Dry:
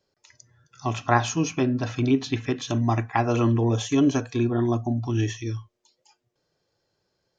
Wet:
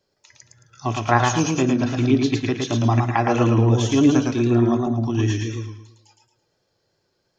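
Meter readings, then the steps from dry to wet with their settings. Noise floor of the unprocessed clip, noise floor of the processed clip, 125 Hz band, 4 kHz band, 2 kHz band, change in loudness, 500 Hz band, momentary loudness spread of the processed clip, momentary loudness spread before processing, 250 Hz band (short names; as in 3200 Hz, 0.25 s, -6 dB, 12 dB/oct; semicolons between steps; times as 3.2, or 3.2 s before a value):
-77 dBFS, -71 dBFS, +5.0 dB, +4.5 dB, +4.5 dB, +4.5 dB, +4.5 dB, 9 LU, 8 LU, +5.0 dB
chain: warbling echo 0.111 s, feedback 38%, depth 84 cents, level -3.5 dB; gain +2.5 dB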